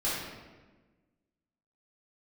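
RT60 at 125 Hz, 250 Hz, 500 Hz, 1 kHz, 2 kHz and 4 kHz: 1.6, 1.7, 1.4, 1.2, 1.1, 0.90 seconds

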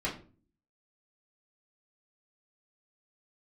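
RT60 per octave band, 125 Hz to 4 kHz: 0.65, 0.65, 0.45, 0.35, 0.30, 0.25 seconds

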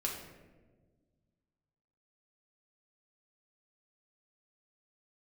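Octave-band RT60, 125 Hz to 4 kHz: 2.4, 2.2, 1.7, 1.1, 1.0, 0.65 seconds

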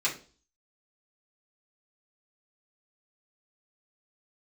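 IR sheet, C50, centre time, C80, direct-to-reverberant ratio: 10.5 dB, 19 ms, 17.0 dB, −6.5 dB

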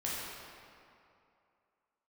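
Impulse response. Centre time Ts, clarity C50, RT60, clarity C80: 149 ms, −3.0 dB, 2.6 s, −1.0 dB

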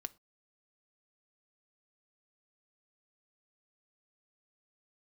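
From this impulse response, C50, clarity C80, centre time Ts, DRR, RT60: 23.5 dB, 29.5 dB, 2 ms, 10.0 dB, non-exponential decay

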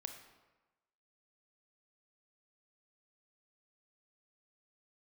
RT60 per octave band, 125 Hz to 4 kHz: 1.1, 1.1, 1.1, 1.2, 1.0, 0.80 seconds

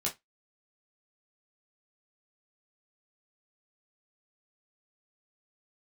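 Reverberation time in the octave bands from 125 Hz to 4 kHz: 0.20, 0.20, 0.15, 0.15, 0.15, 0.15 seconds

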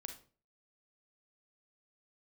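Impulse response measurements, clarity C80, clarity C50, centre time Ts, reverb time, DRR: 14.5 dB, 8.0 dB, 14 ms, 0.40 s, 5.0 dB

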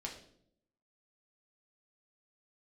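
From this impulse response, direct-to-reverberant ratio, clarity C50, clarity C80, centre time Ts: −1.5 dB, 8.0 dB, 11.0 dB, 23 ms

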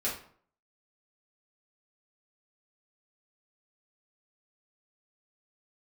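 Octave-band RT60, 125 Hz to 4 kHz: 0.55, 0.55, 0.55, 0.55, 0.45, 0.35 seconds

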